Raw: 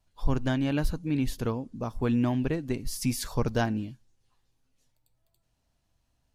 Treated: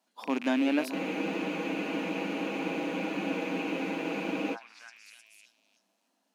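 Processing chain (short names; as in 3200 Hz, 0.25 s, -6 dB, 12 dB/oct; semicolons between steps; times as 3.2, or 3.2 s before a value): rattling part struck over -37 dBFS, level -27 dBFS; in parallel at -2 dB: compressor, threshold -32 dBFS, peak gain reduction 14 dB; on the sum: rippled Chebyshev high-pass 190 Hz, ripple 3 dB; delay with a stepping band-pass 0.311 s, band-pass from 440 Hz, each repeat 0.7 oct, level -5 dB; spectral freeze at 0.96, 3.59 s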